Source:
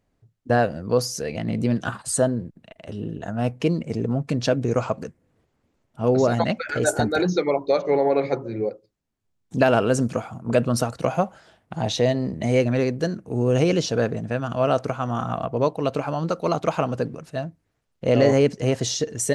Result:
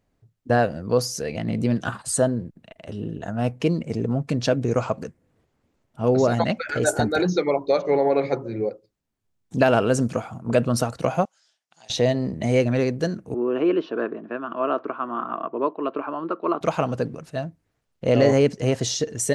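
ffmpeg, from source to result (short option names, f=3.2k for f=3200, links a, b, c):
-filter_complex "[0:a]asettb=1/sr,asplit=3[a][b][c];[a]atrim=end=11.254[d];[b]atrim=start=11.25:end=11.9,asetpts=PTS-STARTPTS,afade=t=in:d=0.004:c=qsin,afade=t=out:st=0.646:d=0.004:c=qsin,bandpass=f=5.9k:t=q:w=2.2[e];[c]atrim=start=11.896[f];[d][e]acrossfade=d=0.004:c1=hsin:c2=qsin[g];[g][f]acrossfade=d=0.004:c1=qsin:c2=hsin,asettb=1/sr,asplit=3[h][i][j];[h]atrim=end=13.344[k];[i]atrim=start=13.34:end=16.61,asetpts=PTS-STARTPTS,afade=t=in:d=0.004:c=qsin,afade=t=out:st=3.266:d=0.004:c=qsin,highpass=f=270:w=0.5412,highpass=f=270:w=1.3066,equalizer=f=350:t=q:w=4:g=6,equalizer=f=510:t=q:w=4:g=-8,equalizer=f=780:t=q:w=4:g=-8,equalizer=f=1.1k:t=q:w=4:g=6,equalizer=f=2.1k:t=q:w=4:g=-9,lowpass=f=2.5k:w=0.5412,lowpass=f=2.5k:w=1.3066[l];[j]atrim=start=16.606[m];[k][l]acrossfade=d=0.004:c1=hsin:c2=qsin[n];[n][m]acrossfade=d=0.004:c1=qsin:c2=hsin"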